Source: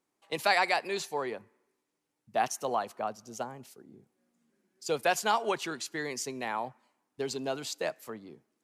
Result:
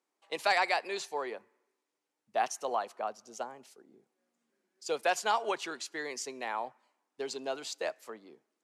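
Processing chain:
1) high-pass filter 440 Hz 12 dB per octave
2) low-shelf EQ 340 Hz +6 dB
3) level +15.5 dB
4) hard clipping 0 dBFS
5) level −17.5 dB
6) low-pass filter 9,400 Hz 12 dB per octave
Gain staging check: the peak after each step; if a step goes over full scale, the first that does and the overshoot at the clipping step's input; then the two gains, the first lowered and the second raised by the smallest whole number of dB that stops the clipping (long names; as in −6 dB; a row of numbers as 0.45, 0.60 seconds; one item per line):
−12.0, −11.5, +4.0, 0.0, −17.5, −17.0 dBFS
step 3, 4.0 dB
step 3 +11.5 dB, step 5 −13.5 dB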